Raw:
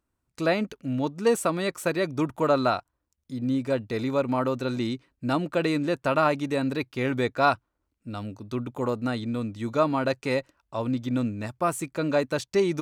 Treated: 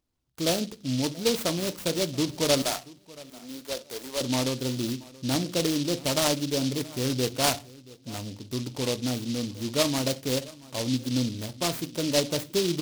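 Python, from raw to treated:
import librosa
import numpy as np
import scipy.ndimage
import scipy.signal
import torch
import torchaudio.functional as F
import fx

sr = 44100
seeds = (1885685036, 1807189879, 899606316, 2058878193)

y = fx.highpass(x, sr, hz=620.0, slope=12, at=(2.62, 4.21))
y = fx.dynamic_eq(y, sr, hz=1700.0, q=0.71, threshold_db=-40.0, ratio=4.0, max_db=-5)
y = fx.echo_feedback(y, sr, ms=679, feedback_pct=21, wet_db=-21.5)
y = fx.room_shoebox(y, sr, seeds[0], volume_m3=150.0, walls='furnished', distance_m=0.42)
y = fx.noise_mod_delay(y, sr, seeds[1], noise_hz=4100.0, depth_ms=0.17)
y = y * librosa.db_to_amplitude(-1.0)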